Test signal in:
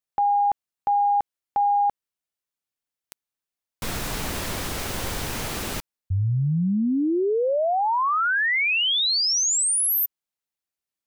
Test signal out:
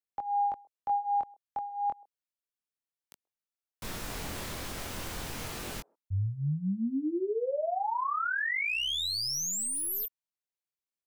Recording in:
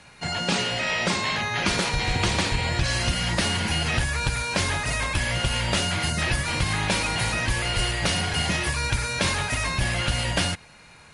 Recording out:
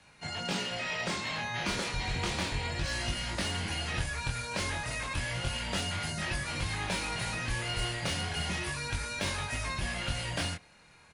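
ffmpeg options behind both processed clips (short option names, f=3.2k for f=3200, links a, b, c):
-filter_complex "[0:a]flanger=delay=20:depth=5.3:speed=0.32,acrossover=split=340|880|2400[a][b][c][d];[b]aecho=1:1:131:0.0944[e];[d]aeval=exprs='clip(val(0),-1,0.0447)':c=same[f];[a][e][c][f]amix=inputs=4:normalize=0,volume=-6dB"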